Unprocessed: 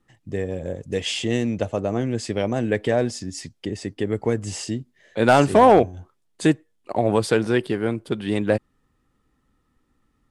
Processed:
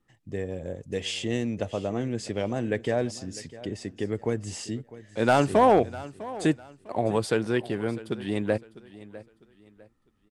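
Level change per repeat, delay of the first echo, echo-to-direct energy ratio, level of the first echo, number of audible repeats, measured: -10.0 dB, 652 ms, -17.0 dB, -17.5 dB, 2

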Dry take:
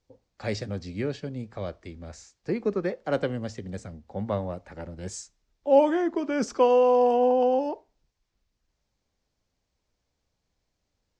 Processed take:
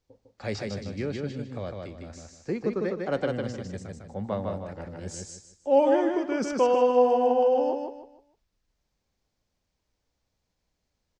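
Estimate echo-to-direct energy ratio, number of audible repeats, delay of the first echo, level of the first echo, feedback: -3.0 dB, 4, 153 ms, -3.5 dB, 30%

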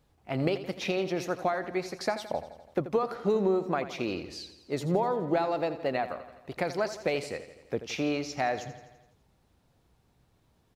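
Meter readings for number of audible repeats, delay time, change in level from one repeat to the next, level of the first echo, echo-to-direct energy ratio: 5, 84 ms, -4.5 dB, -13.0 dB, -11.0 dB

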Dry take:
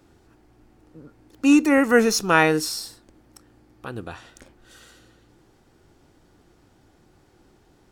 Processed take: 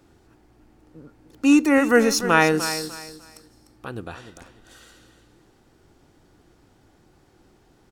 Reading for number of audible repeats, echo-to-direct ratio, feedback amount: 2, -11.5 dB, 26%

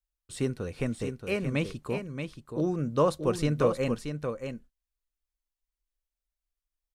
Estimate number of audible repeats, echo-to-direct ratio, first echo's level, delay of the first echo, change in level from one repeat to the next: 1, -7.0 dB, -7.0 dB, 628 ms, no regular repeats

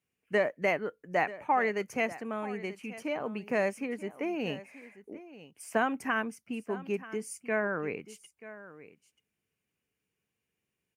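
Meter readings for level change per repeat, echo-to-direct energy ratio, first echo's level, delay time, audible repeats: no regular repeats, -16.5 dB, -16.5 dB, 934 ms, 1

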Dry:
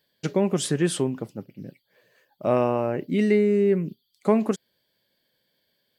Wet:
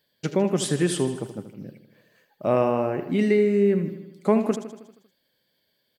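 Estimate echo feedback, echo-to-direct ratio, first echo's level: 59%, -9.0 dB, -11.0 dB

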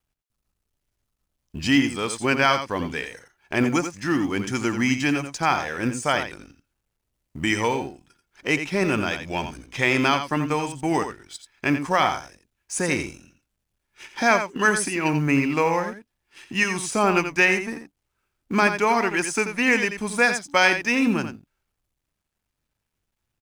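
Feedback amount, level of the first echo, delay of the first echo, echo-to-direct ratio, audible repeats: no regular repeats, -9.0 dB, 86 ms, -9.0 dB, 1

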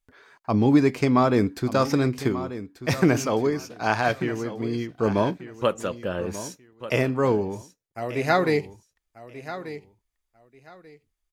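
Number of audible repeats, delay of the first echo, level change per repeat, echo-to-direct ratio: 2, 1187 ms, -13.5 dB, -13.5 dB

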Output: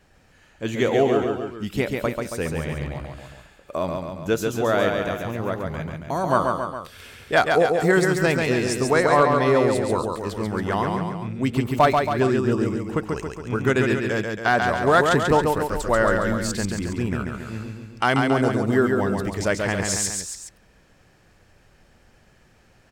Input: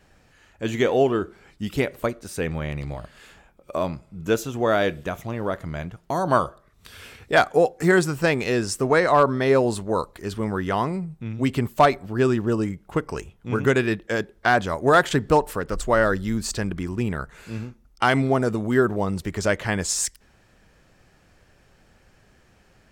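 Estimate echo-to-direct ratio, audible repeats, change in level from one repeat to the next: -2.5 dB, 3, -4.5 dB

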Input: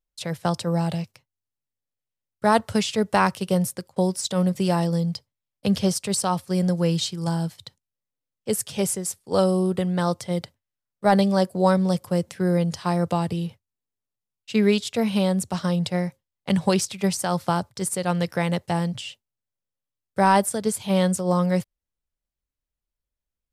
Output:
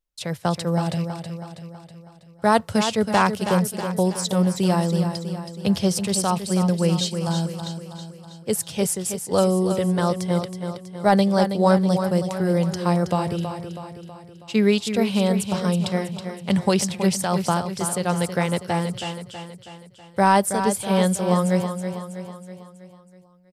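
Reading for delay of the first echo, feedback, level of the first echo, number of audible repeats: 323 ms, 53%, -8.5 dB, 5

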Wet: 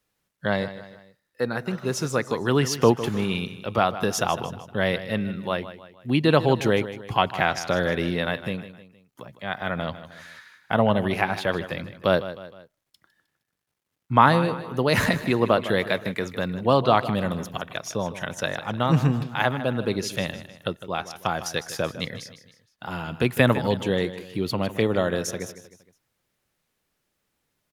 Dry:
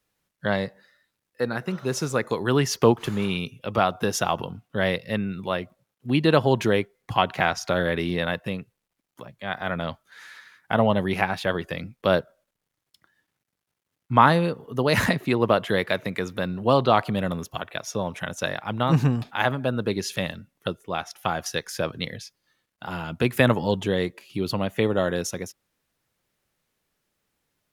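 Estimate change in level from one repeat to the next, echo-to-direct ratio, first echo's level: -7.0 dB, -12.5 dB, -13.5 dB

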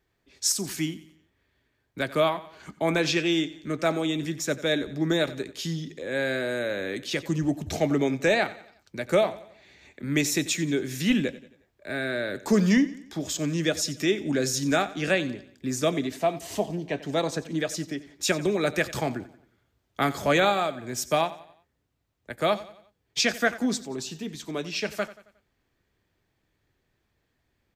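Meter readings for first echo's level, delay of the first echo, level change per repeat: -17.0 dB, 90 ms, -7.0 dB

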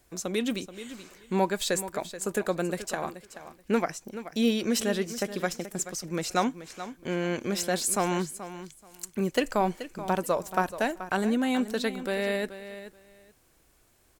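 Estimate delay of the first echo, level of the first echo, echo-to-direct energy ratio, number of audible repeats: 430 ms, -13.0 dB, -13.0 dB, 2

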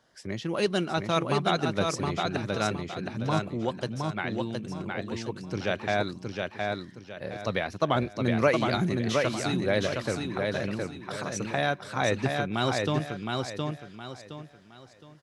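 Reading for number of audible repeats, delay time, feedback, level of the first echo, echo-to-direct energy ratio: 4, 716 ms, 32%, -3.5 dB, -3.0 dB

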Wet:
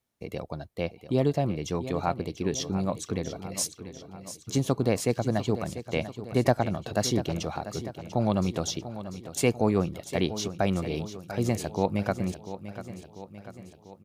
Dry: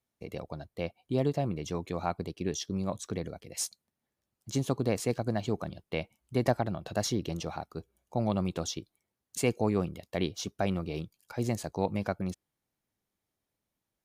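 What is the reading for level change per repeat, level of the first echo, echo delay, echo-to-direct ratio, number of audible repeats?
-5.0 dB, -12.5 dB, 693 ms, -11.0 dB, 5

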